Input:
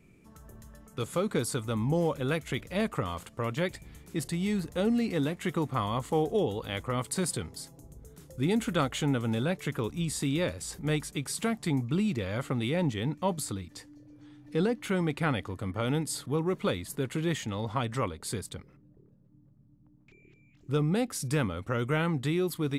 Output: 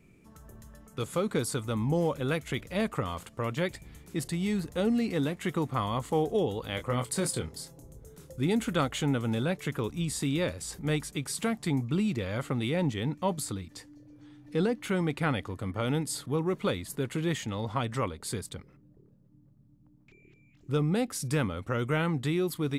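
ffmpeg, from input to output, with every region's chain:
ffmpeg -i in.wav -filter_complex "[0:a]asettb=1/sr,asplit=3[link_01][link_02][link_03];[link_01]atrim=end=6.754[link_04];[link_02]atrim=start=6.75:end=8.33,asetpts=PTS-STARTPTS,afade=type=in:duration=0.004:curve=qsin,afade=type=out:start_time=1.576:duration=0.004:curve=qsin,equalizer=frequency=540:width_type=o:width=0.25:gain=5,asplit=2[link_05][link_06];[link_06]adelay=25,volume=-8dB[link_07];[link_05][link_07]amix=inputs=2:normalize=0,atrim=end_sample=69678[link_08];[link_03]atrim=start=8.326[link_09];[link_04][link_08]acrossfade=duration=0.004:curve1=hsin:curve2=qsin[link_10];[link_10][link_09]acrossfade=duration=0.004:curve1=qsin:curve2=hsin" out.wav

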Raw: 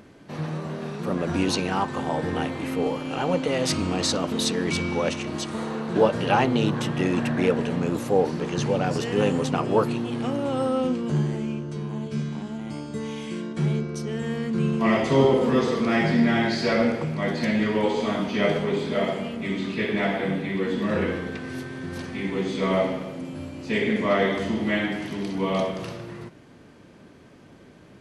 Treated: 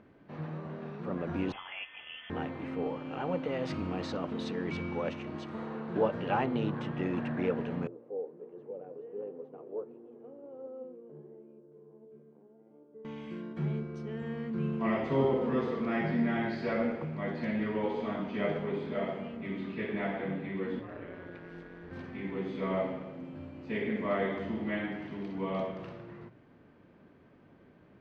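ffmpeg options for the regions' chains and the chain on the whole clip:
ffmpeg -i in.wav -filter_complex "[0:a]asettb=1/sr,asplit=3[link_01][link_02][link_03];[link_01]atrim=end=1.524[link_04];[link_02]atrim=start=1.52:end=2.3,asetpts=PTS-STARTPTS,afade=type=in:duration=0.004:curve=qsin,afade=type=out:start_time=0.776:duration=0.004:curve=qsin,highpass=frequency=960:poles=1,lowpass=frequency=3100:width_type=q:width=0.5098,lowpass=frequency=3100:width_type=q:width=0.6013,lowpass=frequency=3100:width_type=q:width=0.9,lowpass=frequency=3100:width_type=q:width=2.563,afreqshift=-3600[link_05];[link_03]atrim=start=2.296[link_06];[link_04][link_05]acrossfade=duration=0.004:curve1=hsin:curve2=qsin[link_07];[link_07][link_06]acrossfade=duration=0.004:curve1=qsin:curve2=hsin,asettb=1/sr,asplit=3[link_08][link_09][link_10];[link_08]atrim=end=7.874[link_11];[link_09]atrim=start=7.87:end=13.05,asetpts=PTS-STARTPTS,afade=type=in:duration=0.004:curve=qsin,afade=type=out:start_time=5.176:duration=0.004:curve=qsin,flanger=delay=2.5:depth=5.6:regen=77:speed=1.4:shape=triangular,bandpass=frequency=450:width_type=q:width=4[link_12];[link_10]atrim=start=13.046[link_13];[link_11][link_12]acrossfade=duration=0.004:curve1=hsin:curve2=qsin[link_14];[link_14][link_13]acrossfade=duration=0.004:curve1=qsin:curve2=hsin,asettb=1/sr,asplit=3[link_15][link_16][link_17];[link_15]atrim=end=20.794[link_18];[link_16]atrim=start=20.79:end=21.91,asetpts=PTS-STARTPTS,afade=type=in:duration=0.004:curve=qsin,afade=type=out:start_time=1.116:duration=0.004:curve=qsin,highpass=180,acompressor=threshold=-28dB:ratio=4:attack=3.2:release=140:knee=1:detection=peak,aeval=exprs='val(0)*sin(2*PI*90*n/s)':channel_layout=same[link_19];[link_17]atrim=start=21.906[link_20];[link_18][link_19]acrossfade=duration=0.004:curve1=hsin:curve2=qsin[link_21];[link_21][link_20]acrossfade=duration=0.004:curve1=qsin:curve2=hsin,lowpass=2300,bandreject=frequency=60:width_type=h:width=6,bandreject=frequency=120:width_type=h:width=6,volume=-9dB" out.wav

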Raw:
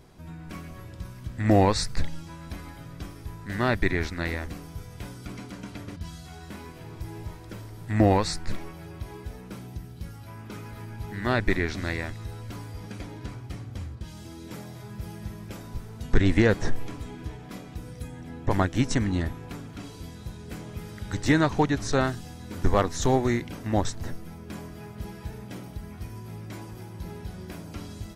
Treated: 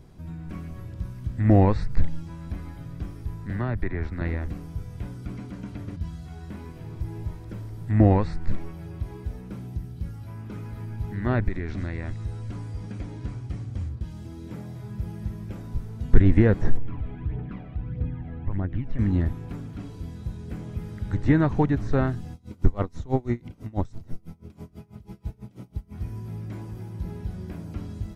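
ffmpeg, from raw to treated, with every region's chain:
ffmpeg -i in.wav -filter_complex "[0:a]asettb=1/sr,asplit=3[link_01][link_02][link_03];[link_01]atrim=end=3.504[link_04];[link_02]atrim=start=3.5:end=4.21,asetpts=PTS-STARTPTS,afade=type=in:duration=0.004:curve=qsin,afade=type=out:start_time=0.706:duration=0.004:curve=qsin,bandreject=frequency=6400:width=12,acrossover=split=150|470|1900[link_05][link_06][link_07][link_08];[link_05]acompressor=threshold=-31dB:ratio=3[link_09];[link_06]acompressor=threshold=-38dB:ratio=3[link_10];[link_07]acompressor=threshold=-30dB:ratio=3[link_11];[link_08]acompressor=threshold=-44dB:ratio=3[link_12];[link_09][link_10][link_11][link_12]amix=inputs=4:normalize=0[link_13];[link_03]atrim=start=4.206[link_14];[link_04][link_13]acrossfade=duration=0.004:curve1=hsin:curve2=qsin[link_15];[link_15][link_14]acrossfade=duration=0.004:curve1=qsin:curve2=hsin,asettb=1/sr,asplit=3[link_16][link_17][link_18];[link_16]atrim=end=11.484[link_19];[link_17]atrim=start=11.48:end=13.89,asetpts=PTS-STARTPTS,afade=type=in:duration=0.004:curve=qsin,afade=type=out:start_time=2.406:duration=0.004:curve=qsin,aemphasis=mode=production:type=cd,acompressor=threshold=-28dB:ratio=4:attack=3.2:release=140:knee=1:detection=peak,lowpass=frequency=9200:width=0.5412,lowpass=frequency=9200:width=1.3066[link_20];[link_18]atrim=start=13.886[link_21];[link_19][link_20]acrossfade=duration=0.004:curve1=hsin:curve2=qsin[link_22];[link_22][link_21]acrossfade=duration=0.004:curve1=qsin:curve2=hsin,asettb=1/sr,asplit=3[link_23][link_24][link_25];[link_23]atrim=end=16.774[link_26];[link_24]atrim=start=16.77:end=18.99,asetpts=PTS-STARTPTS,afade=type=in:duration=0.004:curve=qsin,afade=type=out:start_time=2.216:duration=0.004:curve=qsin,lowpass=frequency=2800:width=0.5412,lowpass=frequency=2800:width=1.3066,acompressor=threshold=-33dB:ratio=4:attack=3.2:release=140:knee=1:detection=peak,aphaser=in_gain=1:out_gain=1:delay=1.8:decay=0.53:speed=1.6:type=triangular[link_27];[link_25]atrim=start=18.986[link_28];[link_26][link_27]acrossfade=duration=0.004:curve1=hsin:curve2=qsin[link_29];[link_29][link_28]acrossfade=duration=0.004:curve1=qsin:curve2=hsin,asettb=1/sr,asplit=3[link_30][link_31][link_32];[link_30]atrim=end=22.334[link_33];[link_31]atrim=start=22.33:end=25.95,asetpts=PTS-STARTPTS,afade=type=in:duration=0.004:curve=qsin,afade=type=out:start_time=3.616:duration=0.004:curve=qsin,bandreject=frequency=1700:width=6.5,aeval=exprs='val(0)*pow(10,-25*(0.5-0.5*cos(2*PI*6.1*n/s))/20)':channel_layout=same[link_34];[link_32]atrim=start=25.946[link_35];[link_33][link_34]acrossfade=duration=0.004:curve1=hsin:curve2=qsin[link_36];[link_36][link_35]acrossfade=duration=0.004:curve1=qsin:curve2=hsin,acrossover=split=2700[link_37][link_38];[link_38]acompressor=threshold=-55dB:ratio=4:attack=1:release=60[link_39];[link_37][link_39]amix=inputs=2:normalize=0,lowshelf=frequency=320:gain=11,volume=-4.5dB" out.wav

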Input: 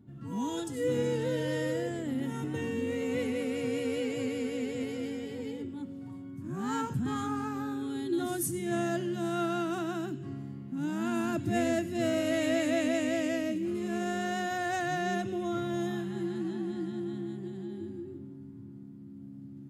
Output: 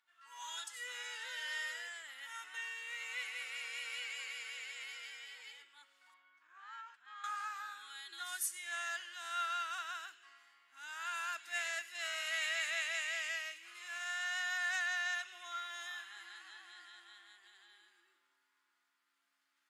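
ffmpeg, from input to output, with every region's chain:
ffmpeg -i in.wav -filter_complex "[0:a]asettb=1/sr,asplit=3[link_01][link_02][link_03];[link_01]atrim=end=6.144[link_04];[link_02]atrim=start=6.14:end=7.24,asetpts=PTS-STARTPTS,afade=type=in:duration=0.004:curve=qsin,afade=type=out:start_time=1.096:duration=0.004:curve=qsin,highpass=120,lowpass=3200,acompressor=threshold=-40dB:ratio=8:attack=3.2:release=140:knee=1:detection=peak[link_05];[link_03]atrim=start=7.236[link_06];[link_04][link_05]acrossfade=duration=0.004:curve1=hsin:curve2=qsin[link_07];[link_07][link_06]acrossfade=duration=0.004:curve1=qsin:curve2=hsin,highpass=frequency=1300:width=0.5412,highpass=frequency=1300:width=1.3066,highshelf=frequency=9400:gain=-11.5,volume=2.5dB" out.wav

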